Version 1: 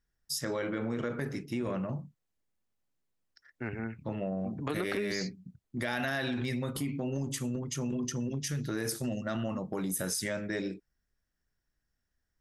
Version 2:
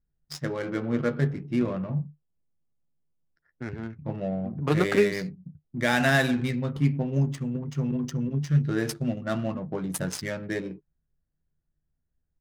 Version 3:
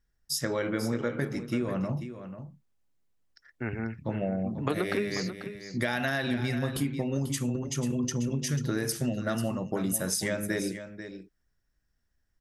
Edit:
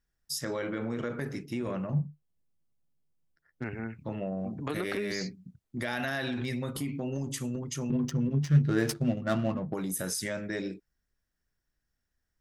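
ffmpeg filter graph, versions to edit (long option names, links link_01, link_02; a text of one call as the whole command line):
ffmpeg -i take0.wav -i take1.wav -filter_complex "[1:a]asplit=2[link_01][link_02];[0:a]asplit=3[link_03][link_04][link_05];[link_03]atrim=end=1.932[link_06];[link_01]atrim=start=1.928:end=3.642[link_07];[link_04]atrim=start=3.638:end=7.902[link_08];[link_02]atrim=start=7.898:end=9.742[link_09];[link_05]atrim=start=9.738[link_10];[link_06][link_07]acrossfade=duration=0.004:curve1=hsin:curve2=hsin[link_11];[link_11][link_08]acrossfade=duration=0.004:curve1=hsin:curve2=hsin[link_12];[link_12][link_09]acrossfade=duration=0.004:curve1=hsin:curve2=hsin[link_13];[link_13][link_10]acrossfade=duration=0.004:curve1=hsin:curve2=hsin" out.wav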